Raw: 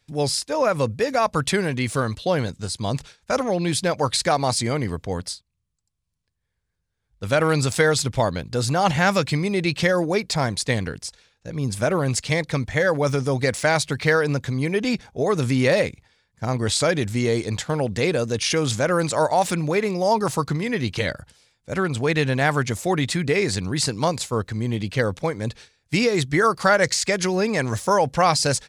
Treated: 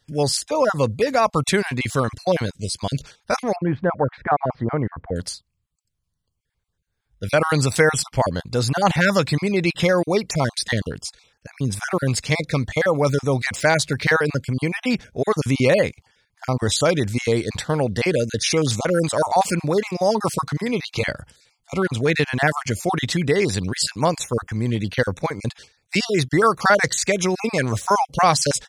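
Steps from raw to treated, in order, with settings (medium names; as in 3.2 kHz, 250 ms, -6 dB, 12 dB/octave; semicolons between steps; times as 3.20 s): random holes in the spectrogram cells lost 26%; 3.56–5.16 s: low-pass 1.7 kHz 24 dB/octave; trim +2.5 dB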